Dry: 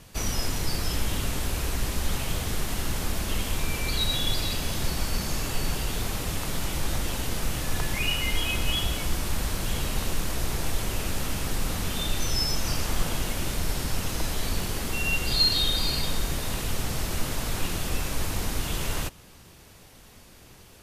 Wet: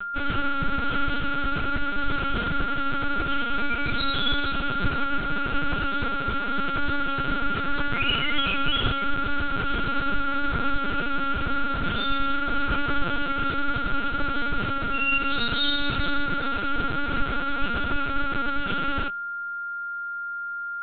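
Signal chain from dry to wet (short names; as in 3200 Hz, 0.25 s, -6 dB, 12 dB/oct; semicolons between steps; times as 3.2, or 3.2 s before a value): whine 1400 Hz -31 dBFS; LPC vocoder at 8 kHz pitch kept; gain +2 dB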